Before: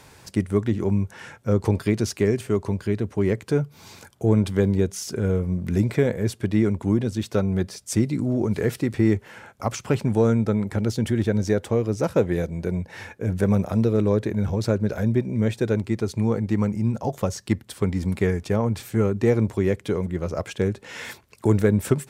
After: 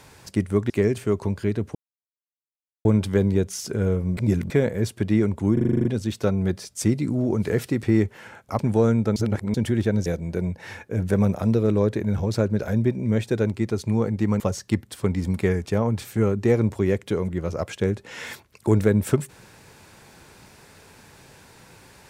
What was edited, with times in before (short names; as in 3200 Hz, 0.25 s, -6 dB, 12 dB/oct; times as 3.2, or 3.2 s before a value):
0.7–2.13 cut
3.18–4.28 mute
5.6–5.93 reverse
6.96 stutter 0.04 s, 9 plays
9.7–10 cut
10.57–10.95 reverse
11.47–12.36 cut
16.7–17.18 cut